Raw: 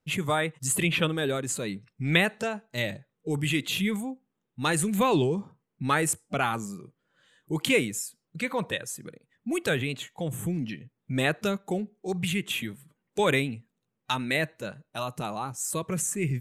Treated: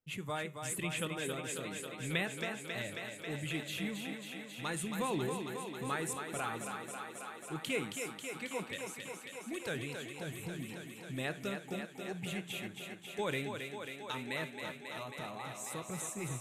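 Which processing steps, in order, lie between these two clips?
feedback echo with a high-pass in the loop 271 ms, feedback 83%, high-pass 170 Hz, level −6 dB
flanger 0.28 Hz, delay 8.2 ms, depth 2.7 ms, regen −85%
level −8 dB

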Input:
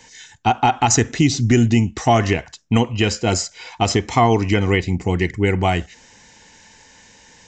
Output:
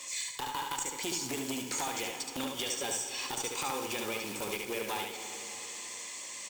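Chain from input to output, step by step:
one scale factor per block 5 bits
high-pass filter 300 Hz 12 dB per octave
high-shelf EQ 2,700 Hz +11 dB
downward compressor 12 to 1, threshold −28 dBFS, peak gain reduction 24.5 dB
asymmetric clip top −27 dBFS, bottom −14.5 dBFS
speed change +15%
on a send: single-tap delay 72 ms −4.5 dB
on the sum: dense smooth reverb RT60 3.9 s, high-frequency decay 0.95×, DRR 7 dB
saturating transformer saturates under 1,300 Hz
level −3 dB

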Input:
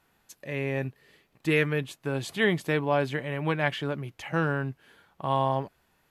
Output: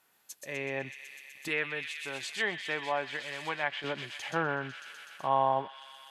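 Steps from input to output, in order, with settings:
high-shelf EQ 6,200 Hz +9.5 dB
delay with a high-pass on its return 125 ms, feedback 84%, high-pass 2,900 Hz, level −4 dB
dynamic equaliser 810 Hz, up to +5 dB, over −38 dBFS, Q 2.4
high-pass filter 510 Hz 6 dB per octave, from 0:01.48 1,300 Hz, from 0:03.84 430 Hz
treble cut that deepens with the level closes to 2,300 Hz, closed at −25.5 dBFS
level −2 dB

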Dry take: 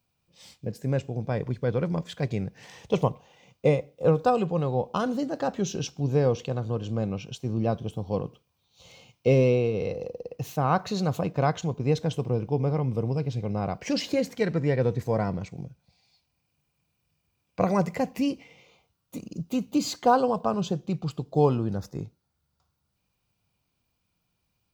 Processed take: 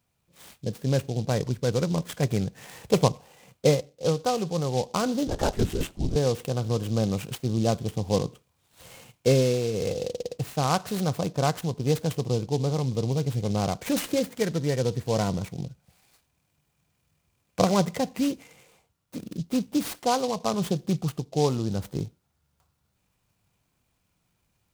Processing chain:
0:05.27–0:06.16: linear-prediction vocoder at 8 kHz whisper
speech leveller within 5 dB 0.5 s
short delay modulated by noise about 4,500 Hz, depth 0.058 ms

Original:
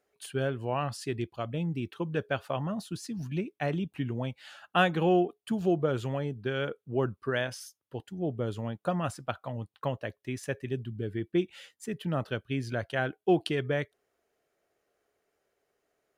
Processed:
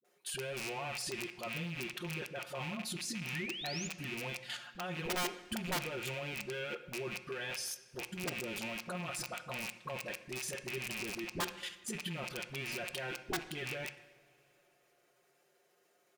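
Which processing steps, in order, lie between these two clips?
loose part that buzzes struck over −41 dBFS, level −26 dBFS
high-pass filter 160 Hz 12 dB per octave
high-shelf EQ 2,200 Hz +5.5 dB
comb filter 5.6 ms, depth 79%
downward compressor 16 to 1, threshold −28 dBFS, peak gain reduction 16.5 dB
brickwall limiter −26 dBFS, peak gain reduction 11 dB
output level in coarse steps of 11 dB
wrap-around overflow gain 32.5 dB
sound drawn into the spectrogram rise, 0:03.30–0:03.83, 1,700–7,200 Hz −47 dBFS
all-pass dispersion highs, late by 47 ms, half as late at 390 Hz
on a send: high-frequency loss of the air 71 metres + convolution reverb, pre-delay 3 ms, DRR 9.5 dB
on the sum: level +3.5 dB

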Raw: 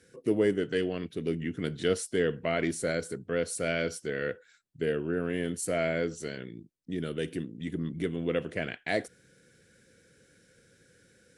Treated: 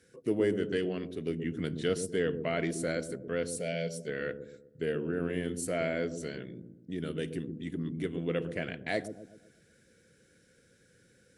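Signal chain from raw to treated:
0:03.50–0:04.08: phaser with its sweep stopped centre 320 Hz, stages 6
on a send: delay with a low-pass on its return 125 ms, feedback 43%, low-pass 400 Hz, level −4.5 dB
on the sum: level −3 dB

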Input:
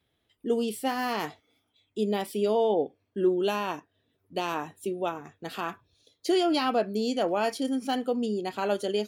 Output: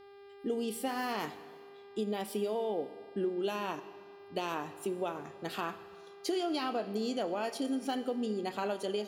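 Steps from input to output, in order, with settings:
downward compressor, threshold −29 dBFS, peak gain reduction 10 dB
hum with harmonics 400 Hz, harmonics 13, −53 dBFS −8 dB per octave
on a send: convolution reverb RT60 1.9 s, pre-delay 23 ms, DRR 13 dB
on the sum: level −1.5 dB

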